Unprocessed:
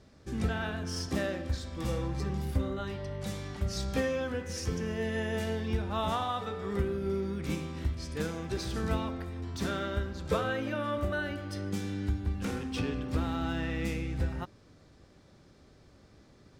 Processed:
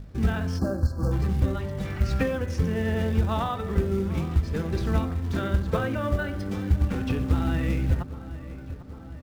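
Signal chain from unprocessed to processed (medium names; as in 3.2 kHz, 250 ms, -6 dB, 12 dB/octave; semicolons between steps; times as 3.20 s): tempo 1.8×; time-frequency box 1.85–2.22 s, 1.2–3 kHz +7 dB; hum 50 Hz, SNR 12 dB; tone controls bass +7 dB, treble -9 dB; hum notches 50/100/150/200/250/300/350/400 Hz; filtered feedback delay 797 ms, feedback 67%, low-pass 2.8 kHz, level -15.5 dB; in parallel at -5.5 dB: short-mantissa float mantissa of 2-bit; on the sum: time-frequency box 0.59–1.12 s, 1.7–4.1 kHz -26 dB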